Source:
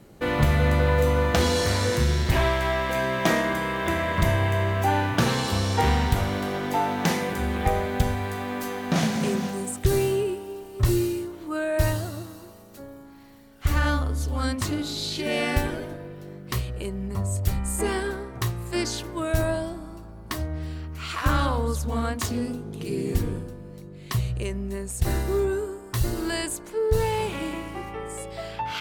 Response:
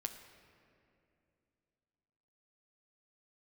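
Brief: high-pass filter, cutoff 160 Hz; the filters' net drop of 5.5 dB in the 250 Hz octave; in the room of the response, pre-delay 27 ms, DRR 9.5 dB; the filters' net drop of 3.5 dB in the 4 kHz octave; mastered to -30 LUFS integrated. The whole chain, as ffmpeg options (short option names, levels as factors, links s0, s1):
-filter_complex "[0:a]highpass=160,equalizer=f=250:t=o:g=-6.5,equalizer=f=4000:t=o:g=-4.5,asplit=2[s0][s1];[1:a]atrim=start_sample=2205,adelay=27[s2];[s1][s2]afir=irnorm=-1:irlink=0,volume=0.398[s3];[s0][s3]amix=inputs=2:normalize=0,volume=0.891"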